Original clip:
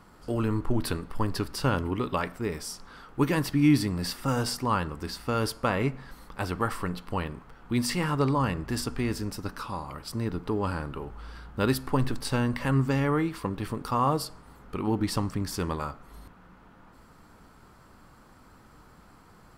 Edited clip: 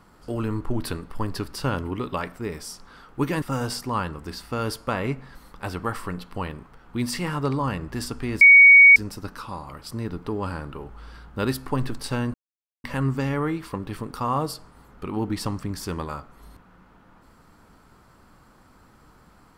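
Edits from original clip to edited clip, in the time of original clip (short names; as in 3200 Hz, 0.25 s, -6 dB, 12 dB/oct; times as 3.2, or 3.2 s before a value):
3.42–4.18 cut
9.17 add tone 2240 Hz -7 dBFS 0.55 s
12.55 insert silence 0.50 s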